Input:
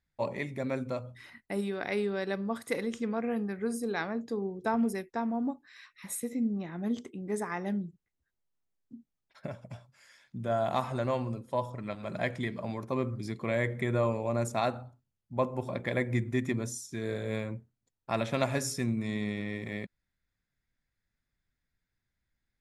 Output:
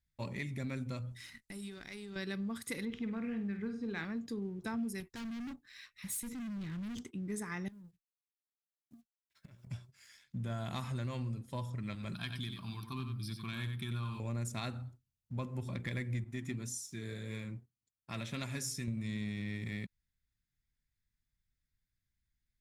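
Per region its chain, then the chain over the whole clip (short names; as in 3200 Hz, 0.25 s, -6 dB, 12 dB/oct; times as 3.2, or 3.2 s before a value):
1.11–2.16 half-wave gain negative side -3 dB + bell 7300 Hz +8.5 dB 1.5 oct + compressor 4:1, threshold -42 dBFS
2.85–4.05 LPF 3400 Hz 24 dB/oct + flutter echo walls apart 8.5 m, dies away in 0.33 s
5–7.04 low shelf 100 Hz +10.5 dB + hard clip -38.5 dBFS
7.68–9.67 G.711 law mismatch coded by A + doubler 17 ms -11.5 dB + compressor 20:1, threshold -49 dBFS
12.14–14.2 tilt +2 dB/oct + fixed phaser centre 2000 Hz, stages 6 + echo 92 ms -6.5 dB
16.24–18.88 HPF 99 Hz 6 dB/oct + flange 1.8 Hz, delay 1.9 ms, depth 6.1 ms, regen +65%
whole clip: passive tone stack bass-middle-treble 6-0-2; compressor 3:1, threshold -53 dBFS; sample leveller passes 1; gain +14 dB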